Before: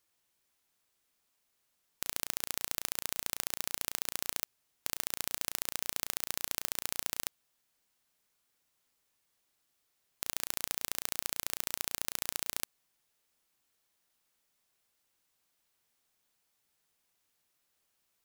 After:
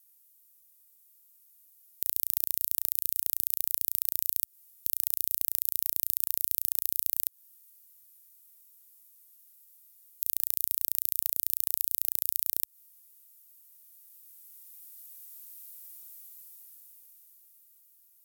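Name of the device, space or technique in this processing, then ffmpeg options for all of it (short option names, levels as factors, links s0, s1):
FM broadcast chain: -filter_complex "[0:a]highpass=f=68:w=0.5412,highpass=f=68:w=1.3066,dynaudnorm=f=180:g=21:m=5.62,acrossover=split=3200|7000[s0][s1][s2];[s0]acompressor=threshold=0.00794:ratio=4[s3];[s1]acompressor=threshold=0.00794:ratio=4[s4];[s2]acompressor=threshold=0.02:ratio=4[s5];[s3][s4][s5]amix=inputs=3:normalize=0,aemphasis=mode=production:type=50fm,alimiter=limit=0.944:level=0:latency=1:release=152,asoftclip=type=hard:threshold=0.708,lowpass=f=15000:w=0.5412,lowpass=f=15000:w=1.3066,aemphasis=mode=production:type=50fm,volume=0.376"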